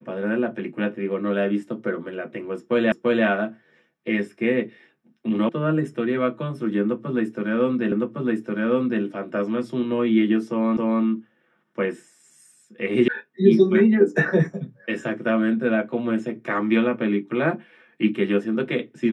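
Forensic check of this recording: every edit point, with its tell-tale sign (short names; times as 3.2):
2.92 repeat of the last 0.34 s
5.49 sound cut off
7.92 repeat of the last 1.11 s
10.77 repeat of the last 0.27 s
13.08 sound cut off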